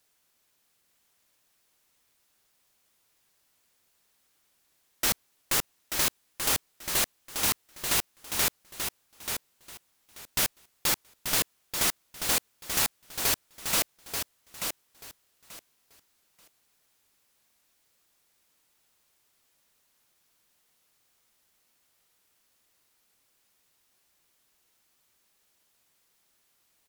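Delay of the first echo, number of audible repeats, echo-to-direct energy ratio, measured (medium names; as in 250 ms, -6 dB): 885 ms, 3, -6.5 dB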